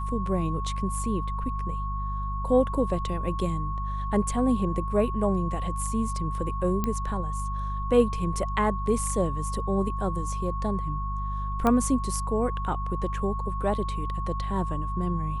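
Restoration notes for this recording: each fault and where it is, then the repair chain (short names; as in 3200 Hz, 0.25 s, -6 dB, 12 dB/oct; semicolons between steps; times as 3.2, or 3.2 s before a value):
hum 50 Hz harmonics 4 -31 dBFS
tone 1100 Hz -33 dBFS
6.84 pop -14 dBFS
11.67 pop -12 dBFS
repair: de-click; notch 1100 Hz, Q 30; de-hum 50 Hz, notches 4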